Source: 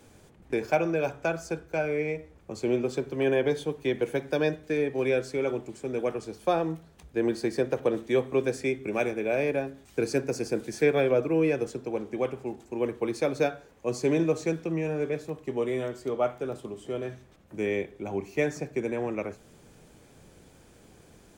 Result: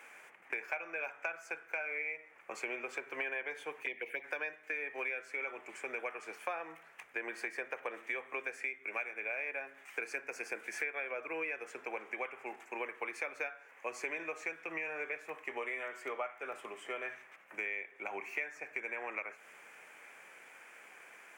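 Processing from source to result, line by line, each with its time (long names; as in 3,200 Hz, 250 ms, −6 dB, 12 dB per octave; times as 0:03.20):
0:03.83–0:04.24: phaser swept by the level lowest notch 160 Hz, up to 1,500 Hz, full sweep at −23.5 dBFS
whole clip: high-pass filter 1,100 Hz 12 dB per octave; high shelf with overshoot 3,000 Hz −9.5 dB, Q 3; downward compressor 6 to 1, threshold −44 dBFS; level +7.5 dB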